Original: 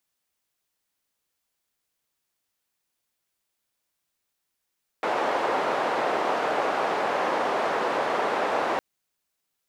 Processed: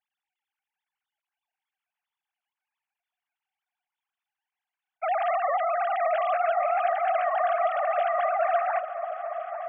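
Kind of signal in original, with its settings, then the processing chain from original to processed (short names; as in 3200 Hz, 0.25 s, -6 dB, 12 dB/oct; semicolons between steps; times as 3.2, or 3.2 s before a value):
noise band 540–740 Hz, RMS -25.5 dBFS 3.76 s
sine-wave speech; notches 60/120/180/240/300/360/420/480/540 Hz; repeats that get brighter 0.282 s, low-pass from 200 Hz, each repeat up 1 oct, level -3 dB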